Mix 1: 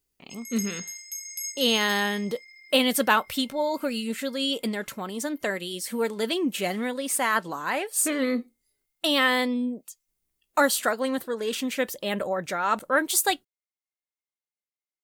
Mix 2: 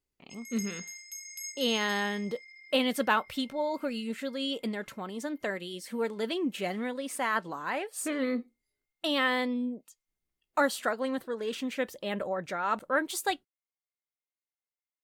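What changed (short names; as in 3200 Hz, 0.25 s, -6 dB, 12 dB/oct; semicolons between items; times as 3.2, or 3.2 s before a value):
speech -4.5 dB; master: add high shelf 5700 Hz -11.5 dB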